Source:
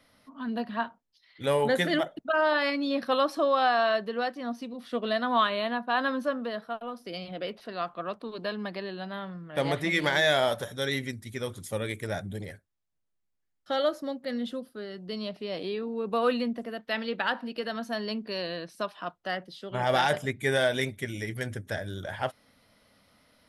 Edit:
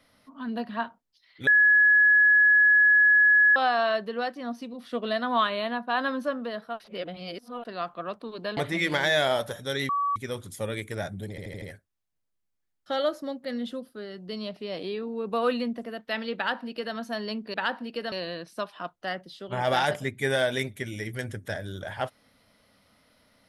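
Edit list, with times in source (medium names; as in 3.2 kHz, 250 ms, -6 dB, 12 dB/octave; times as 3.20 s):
1.47–3.56 s: bleep 1.69 kHz -15 dBFS
6.80–7.65 s: reverse
8.57–9.69 s: delete
11.01–11.28 s: bleep 1.14 kHz -23 dBFS
12.42 s: stutter 0.08 s, 5 plays
17.16–17.74 s: copy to 18.34 s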